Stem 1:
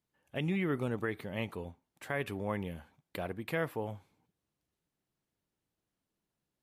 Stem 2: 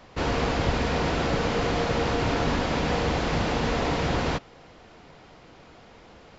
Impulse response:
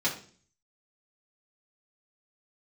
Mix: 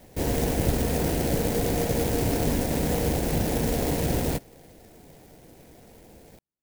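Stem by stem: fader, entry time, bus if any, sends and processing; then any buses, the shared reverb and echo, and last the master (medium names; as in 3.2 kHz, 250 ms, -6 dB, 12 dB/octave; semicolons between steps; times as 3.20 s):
-10.0 dB, 0.00 s, no send, none
+2.5 dB, 0.00 s, no send, tone controls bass -1 dB, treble -12 dB; static phaser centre 2.9 kHz, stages 4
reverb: none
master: sampling jitter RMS 0.1 ms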